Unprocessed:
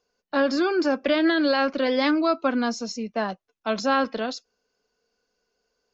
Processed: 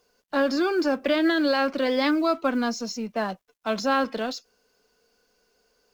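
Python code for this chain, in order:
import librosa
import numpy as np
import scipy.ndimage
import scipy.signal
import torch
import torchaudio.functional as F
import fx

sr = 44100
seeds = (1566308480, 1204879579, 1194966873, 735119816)

y = fx.law_mismatch(x, sr, coded='mu')
y = y * 10.0 ** (-1.5 / 20.0)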